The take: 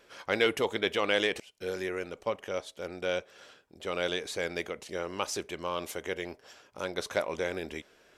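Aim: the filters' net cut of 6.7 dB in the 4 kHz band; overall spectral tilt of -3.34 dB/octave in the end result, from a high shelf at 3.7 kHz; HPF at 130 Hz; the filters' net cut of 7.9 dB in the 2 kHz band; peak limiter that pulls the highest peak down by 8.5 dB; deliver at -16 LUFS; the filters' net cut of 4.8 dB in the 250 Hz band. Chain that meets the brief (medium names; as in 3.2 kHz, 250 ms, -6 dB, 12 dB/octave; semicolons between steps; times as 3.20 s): high-pass 130 Hz; peaking EQ 250 Hz -7 dB; peaking EQ 2 kHz -8.5 dB; treble shelf 3.7 kHz -3 dB; peaking EQ 4 kHz -3.5 dB; trim +22.5 dB; peak limiter -1.5 dBFS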